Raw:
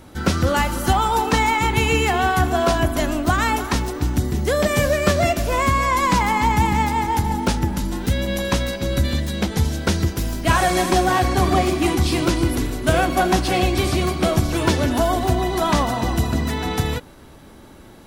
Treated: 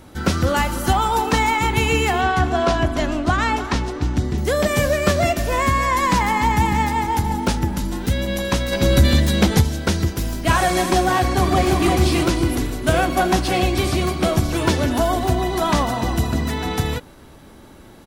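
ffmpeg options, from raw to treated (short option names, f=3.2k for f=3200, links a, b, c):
-filter_complex "[0:a]asettb=1/sr,asplit=3[a][b][c];[a]atrim=end=2.214[d];[b]atrim=start=2.21:end=4.38,asetpts=PTS-STARTPTS,afade=t=in:d=0.004:c=qsin,afade=t=out:st=2.166:d=0.004:c=qsin,lowpass=5.9k[e];[c]atrim=start=4.376[f];[d][e]acrossfade=d=0.004:c1=hsin:c2=qsin[g];[g][f]acrossfade=d=0.004:c1=qsin:c2=hsin,asettb=1/sr,asplit=3[h][i][j];[h]atrim=end=5.364[k];[i]atrim=start=5.36:end=7,asetpts=PTS-STARTPTS,afade=t=in:d=0.004:c=qsin,afade=t=out:st=1.636:d=0.004:c=qsin,aeval=exprs='val(0)+0.0158*sin(2*PI*1800*n/s)':c=same[l];[j]atrim=start=6.996[m];[k][l]acrossfade=d=0.004:c1=hsin:c2=qsin[n];[n][m]acrossfade=d=0.004:c1=qsin:c2=hsin,asplit=3[o][p][q];[o]afade=t=out:st=8.71:d=0.02[r];[p]acontrast=86,afade=t=in:st=8.71:d=0.02,afade=t=out:st=9.6:d=0.02[s];[q]afade=t=in:st=9.6:d=0.02[t];[r][s][t]amix=inputs=3:normalize=0,asplit=2[u][v];[v]afade=t=in:st=11.22:d=0.01,afade=t=out:st=11.89:d=0.01,aecho=0:1:340|680|1020|1360:0.668344|0.167086|0.0417715|0.0104429[w];[u][w]amix=inputs=2:normalize=0"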